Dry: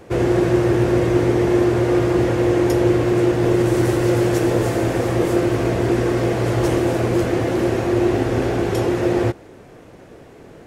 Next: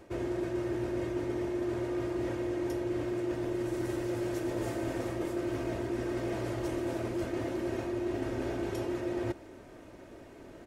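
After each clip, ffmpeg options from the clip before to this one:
-af "aecho=1:1:3.2:0.44,areverse,acompressor=threshold=-23dB:ratio=6,areverse,volume=-8dB"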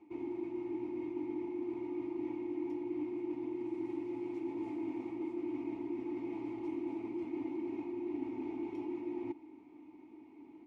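-filter_complex "[0:a]asplit=3[a][b][c];[a]bandpass=f=300:t=q:w=8,volume=0dB[d];[b]bandpass=f=870:t=q:w=8,volume=-6dB[e];[c]bandpass=f=2.24k:t=q:w=8,volume=-9dB[f];[d][e][f]amix=inputs=3:normalize=0,volume=3.5dB"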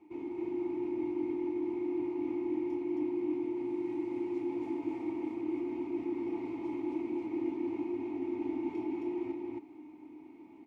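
-af "aecho=1:1:29.15|189.5|268.2:0.562|0.251|0.891"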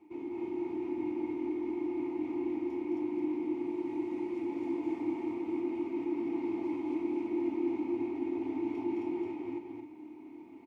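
-af "bandreject=f=60:t=h:w=6,bandreject=f=120:t=h:w=6,aecho=1:1:215.7|259.5:0.708|0.316"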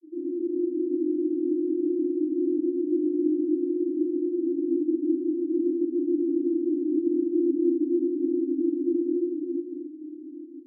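-af "asuperpass=centerf=310:order=20:qfactor=2.7,volume=9dB"

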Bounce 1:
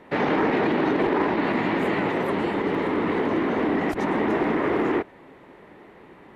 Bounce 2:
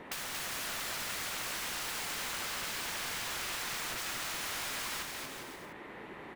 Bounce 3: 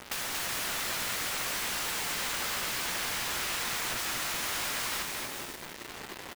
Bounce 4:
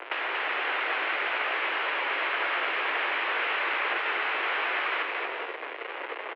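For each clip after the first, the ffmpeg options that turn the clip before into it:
-filter_complex "[0:a]aeval=exprs='(mod(31.6*val(0)+1,2)-1)/31.6':c=same,acrossover=split=1100|2200[a][b][c];[a]acompressor=threshold=-53dB:ratio=4[d];[b]acompressor=threshold=-47dB:ratio=4[e];[c]acompressor=threshold=-44dB:ratio=4[f];[d][e][f]amix=inputs=3:normalize=0,aecho=1:1:230|402.5|531.9|628.9|701.7:0.631|0.398|0.251|0.158|0.1,volume=3dB"
-filter_complex "[0:a]acrusher=bits=6:mix=0:aa=0.000001,asplit=2[a][b];[b]adelay=17,volume=-11.5dB[c];[a][c]amix=inputs=2:normalize=0,volume=4dB"
-af "highpass=f=240:t=q:w=0.5412,highpass=f=240:t=q:w=1.307,lowpass=f=2.7k:t=q:w=0.5176,lowpass=f=2.7k:t=q:w=0.7071,lowpass=f=2.7k:t=q:w=1.932,afreqshift=110,volume=8.5dB"

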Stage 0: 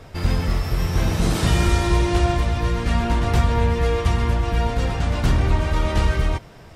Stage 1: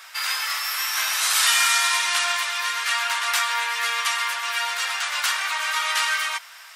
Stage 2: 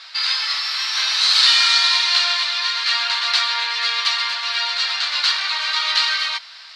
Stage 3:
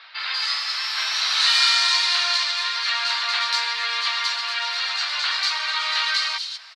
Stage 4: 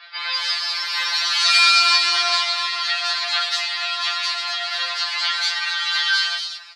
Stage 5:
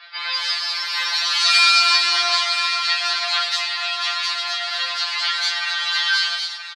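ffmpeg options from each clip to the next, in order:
-af "highpass=f=1.2k:w=0.5412,highpass=f=1.2k:w=1.3066,highshelf=f=8.5k:g=9,volume=8.5dB"
-af "lowpass=f=4.3k:t=q:w=6.7,volume=-1.5dB"
-filter_complex "[0:a]acrossover=split=3700[a][b];[b]adelay=190[c];[a][c]amix=inputs=2:normalize=0,volume=-1.5dB"
-af "afftfilt=real='re*2.83*eq(mod(b,8),0)':imag='im*2.83*eq(mod(b,8),0)':win_size=2048:overlap=0.75,volume=4.5dB"
-af "aecho=1:1:974:0.282"

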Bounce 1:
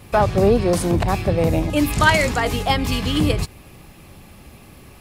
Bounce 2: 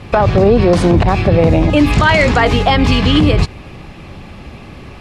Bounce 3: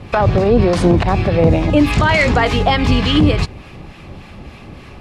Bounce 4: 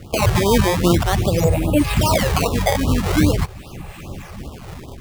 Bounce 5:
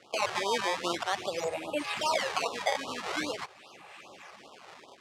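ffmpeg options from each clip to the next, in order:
-af "lowpass=4.1k,alimiter=level_in=12dB:limit=-1dB:release=50:level=0:latency=1,volume=-1dB"
-filter_complex "[0:a]acrossover=split=900[a][b];[a]aeval=exprs='val(0)*(1-0.5/2+0.5/2*cos(2*PI*3.4*n/s))':c=same[c];[b]aeval=exprs='val(0)*(1-0.5/2-0.5/2*cos(2*PI*3.4*n/s))':c=same[d];[c][d]amix=inputs=2:normalize=0"
-af "dynaudnorm=f=130:g=3:m=6dB,acrusher=samples=18:mix=1:aa=0.000001:lfo=1:lforange=28.8:lforate=0.45,afftfilt=real='re*(1-between(b*sr/1024,220*pow(2000/220,0.5+0.5*sin(2*PI*2.5*pts/sr))/1.41,220*pow(2000/220,0.5+0.5*sin(2*PI*2.5*pts/sr))*1.41))':imag='im*(1-between(b*sr/1024,220*pow(2000/220,0.5+0.5*sin(2*PI*2.5*pts/sr))/1.41,220*pow(2000/220,0.5+0.5*sin(2*PI*2.5*pts/sr))*1.41))':win_size=1024:overlap=0.75,volume=-4dB"
-af "highpass=640,lowpass=6k,volume=-7.5dB"

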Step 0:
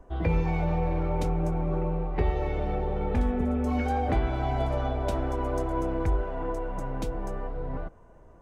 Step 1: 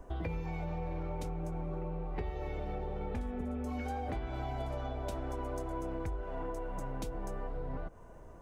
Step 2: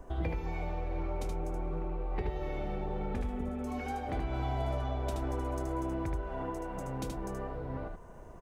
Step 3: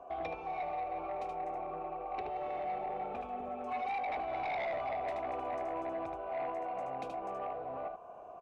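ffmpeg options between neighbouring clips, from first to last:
-af "highshelf=f=5k:g=7.5,acompressor=threshold=-36dB:ratio=6,volume=1dB"
-af "aecho=1:1:76:0.631,volume=1.5dB"
-filter_complex "[0:a]asplit=3[a][b][c];[a]bandpass=f=730:t=q:w=8,volume=0dB[d];[b]bandpass=f=1.09k:t=q:w=8,volume=-6dB[e];[c]bandpass=f=2.44k:t=q:w=8,volume=-9dB[f];[d][e][f]amix=inputs=3:normalize=0,aeval=exprs='0.0237*sin(PI/2*2.82*val(0)/0.0237)':c=same"

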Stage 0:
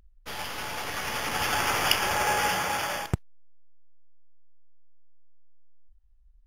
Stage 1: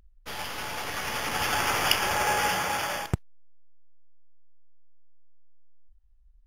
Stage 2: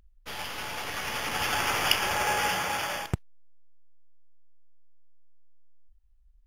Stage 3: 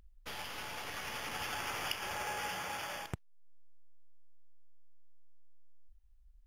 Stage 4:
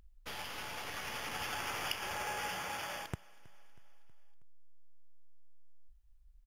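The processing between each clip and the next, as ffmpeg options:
-af anull
-af "equalizer=f=2.8k:w=1.5:g=2.5,volume=-2dB"
-af "acompressor=threshold=-44dB:ratio=2,volume=-1dB"
-af "aecho=1:1:320|640|960|1280:0.0668|0.0401|0.0241|0.0144"

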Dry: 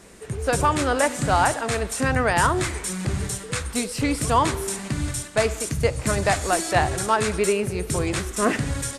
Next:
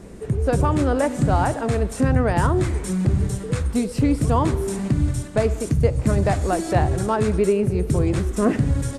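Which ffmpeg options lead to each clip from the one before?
-filter_complex "[0:a]tiltshelf=f=710:g=8.5,asplit=2[a][b];[b]acompressor=threshold=-26dB:ratio=6,volume=3dB[c];[a][c]amix=inputs=2:normalize=0,volume=-4dB"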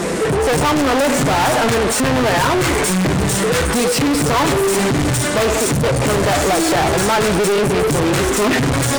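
-filter_complex "[0:a]flanger=delay=5.8:depth=2.5:regen=49:speed=0.28:shape=triangular,aeval=exprs='clip(val(0),-1,0.0501)':c=same,asplit=2[a][b];[b]highpass=f=720:p=1,volume=42dB,asoftclip=type=tanh:threshold=-8.5dB[c];[a][c]amix=inputs=2:normalize=0,lowpass=f=7.2k:p=1,volume=-6dB"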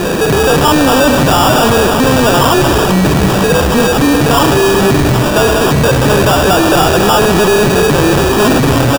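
-af "acrusher=samples=21:mix=1:aa=0.000001,aecho=1:1:282:0.316,volume=6dB"

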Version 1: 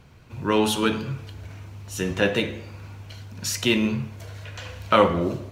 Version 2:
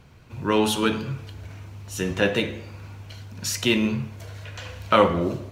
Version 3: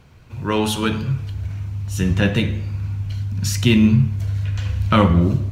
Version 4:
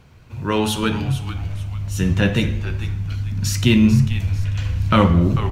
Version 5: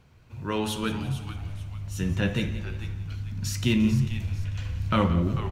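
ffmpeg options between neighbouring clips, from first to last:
-af anull
-af "asubboost=boost=9.5:cutoff=170,volume=1.5dB"
-filter_complex "[0:a]asplit=4[a][b][c][d];[b]adelay=444,afreqshift=-130,volume=-11.5dB[e];[c]adelay=888,afreqshift=-260,volume=-21.1dB[f];[d]adelay=1332,afreqshift=-390,volume=-30.8dB[g];[a][e][f][g]amix=inputs=4:normalize=0"
-af "aecho=1:1:174|348|522|696:0.178|0.0729|0.0299|0.0123,volume=-8.5dB"

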